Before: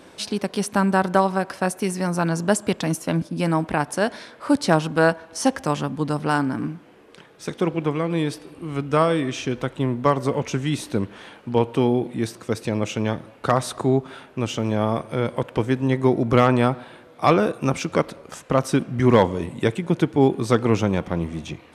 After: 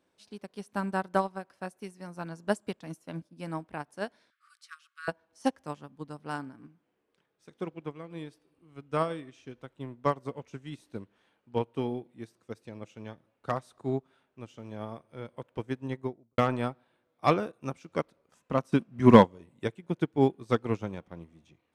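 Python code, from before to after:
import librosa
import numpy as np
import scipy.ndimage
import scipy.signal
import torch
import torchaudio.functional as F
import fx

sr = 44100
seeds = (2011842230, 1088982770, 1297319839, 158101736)

y = fx.brickwall_highpass(x, sr, low_hz=1100.0, at=(4.3, 5.08))
y = fx.studio_fade_out(y, sr, start_s=15.89, length_s=0.49)
y = fx.small_body(y, sr, hz=(210.0, 1000.0, 2600.0), ring_ms=45, db=7, at=(18.34, 19.24))
y = fx.upward_expand(y, sr, threshold_db=-28.0, expansion=2.5)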